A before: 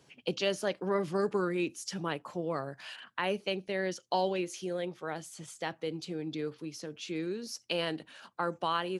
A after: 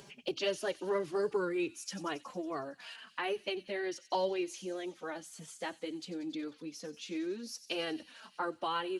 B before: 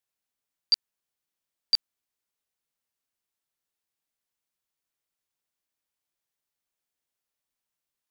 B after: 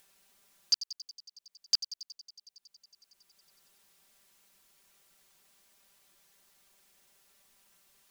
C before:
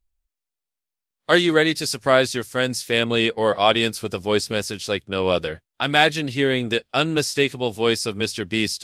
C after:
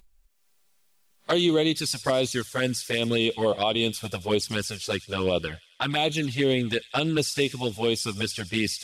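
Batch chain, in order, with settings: touch-sensitive flanger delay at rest 5.1 ms, full sweep at -15.5 dBFS; peak limiter -13 dBFS; on a send: feedback echo behind a high-pass 92 ms, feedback 71%, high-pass 4.2 kHz, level -12 dB; on the sum: upward compressor, threshold -46 dBFS

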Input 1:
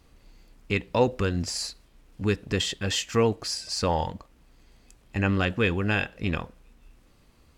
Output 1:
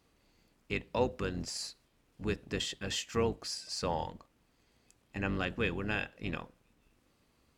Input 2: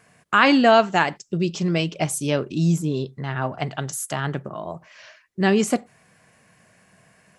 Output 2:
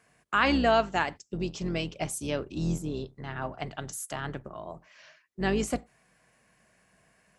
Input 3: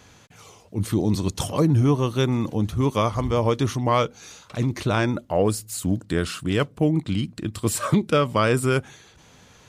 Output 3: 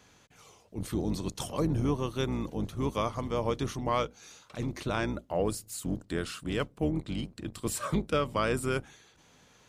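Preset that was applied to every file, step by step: octave divider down 2 oct, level +1 dB; high-pass 170 Hz 6 dB/octave; trim -8 dB

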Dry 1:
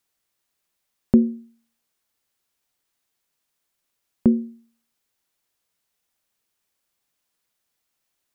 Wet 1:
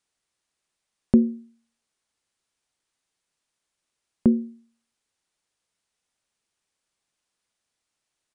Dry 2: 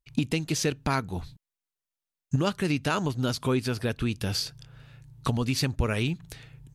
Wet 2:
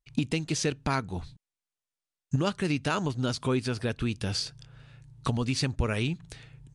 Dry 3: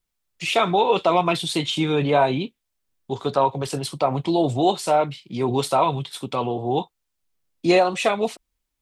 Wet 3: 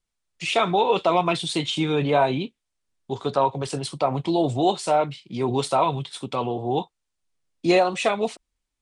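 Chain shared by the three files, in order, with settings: resampled via 22.05 kHz; trim -1.5 dB

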